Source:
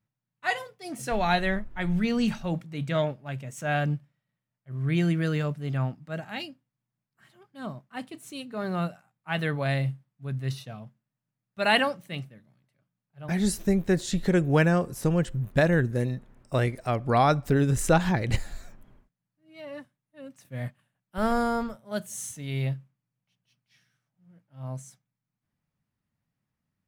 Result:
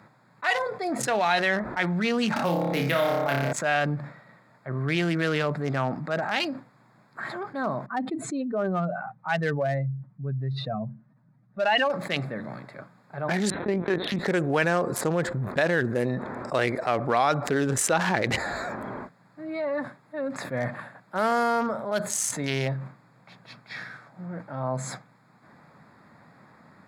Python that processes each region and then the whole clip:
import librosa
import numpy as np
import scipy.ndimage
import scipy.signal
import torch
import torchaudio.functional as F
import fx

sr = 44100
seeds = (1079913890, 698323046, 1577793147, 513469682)

y = fx.chain(x, sr, fx.room_flutter(wall_m=5.0, rt60_s=0.8),
    fx.resample_bad(factor=3, down='filtered', up='hold'),
    fx.band_squash(depth_pct=70), at=(2.36, 3.53))
y = fx.chain(y, sr, fx.spec_expand(power=1.8),
    fx.lowpass(hz=6800.0, slope=12), at=(7.86, 11.9))
y = fx.chain(y, sr, fx.highpass(hz=65.0, slope=12),
    fx.lpc_vocoder(seeds[0], excitation='pitch_kept', order=10), at=(13.5, 14.19))
y = fx.wiener(y, sr, points=15)
y = fx.weighting(y, sr, curve='A')
y = fx.env_flatten(y, sr, amount_pct=70)
y = y * 10.0 ** (-1.0 / 20.0)